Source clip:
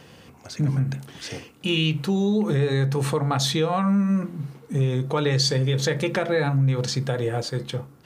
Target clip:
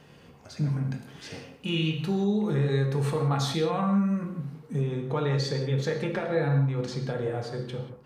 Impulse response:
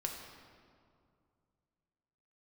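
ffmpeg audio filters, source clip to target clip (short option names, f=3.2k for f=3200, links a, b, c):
-filter_complex "[0:a]asetnsamples=n=441:p=0,asendcmd='4.81 highshelf g -11',highshelf=f=3.3k:g=-5[a];[1:a]atrim=start_sample=2205,afade=t=out:st=0.24:d=0.01,atrim=end_sample=11025[b];[a][b]afir=irnorm=-1:irlink=0,volume=-4.5dB"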